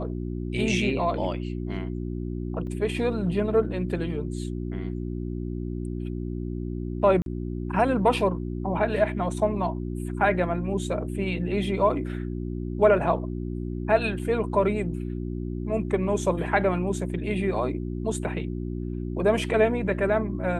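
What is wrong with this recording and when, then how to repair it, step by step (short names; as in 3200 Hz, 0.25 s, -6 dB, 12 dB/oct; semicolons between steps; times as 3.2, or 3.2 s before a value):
hum 60 Hz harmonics 6 -31 dBFS
2.67 gap 2.4 ms
7.22–7.26 gap 42 ms
14.19 gap 4.6 ms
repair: de-hum 60 Hz, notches 6; interpolate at 2.67, 2.4 ms; interpolate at 7.22, 42 ms; interpolate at 14.19, 4.6 ms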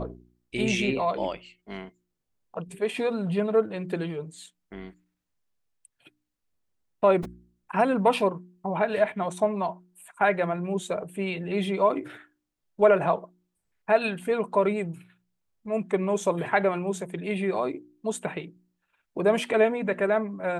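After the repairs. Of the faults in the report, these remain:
none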